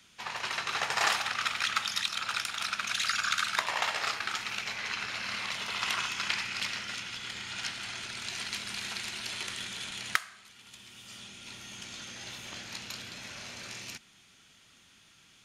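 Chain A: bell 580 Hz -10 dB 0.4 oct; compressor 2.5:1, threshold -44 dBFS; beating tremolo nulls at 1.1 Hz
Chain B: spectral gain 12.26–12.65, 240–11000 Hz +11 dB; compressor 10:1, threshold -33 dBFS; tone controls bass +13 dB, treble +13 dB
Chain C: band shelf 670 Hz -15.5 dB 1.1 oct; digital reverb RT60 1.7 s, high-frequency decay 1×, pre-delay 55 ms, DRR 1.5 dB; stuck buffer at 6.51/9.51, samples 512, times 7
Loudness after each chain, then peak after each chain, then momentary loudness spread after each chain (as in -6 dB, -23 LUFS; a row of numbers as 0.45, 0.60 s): -45.0, -31.0, -30.5 LUFS; -21.5, -9.0, -6.0 dBFS; 11, 13, 14 LU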